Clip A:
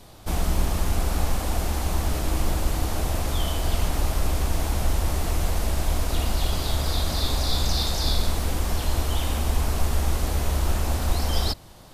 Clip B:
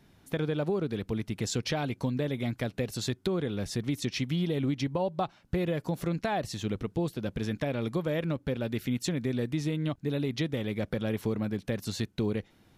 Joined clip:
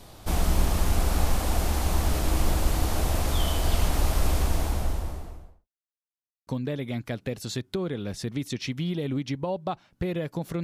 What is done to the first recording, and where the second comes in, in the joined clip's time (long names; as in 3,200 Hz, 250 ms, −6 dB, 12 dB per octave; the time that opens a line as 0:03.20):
clip A
0:04.30–0:05.68: fade out and dull
0:05.68–0:06.47: silence
0:06.47: continue with clip B from 0:01.99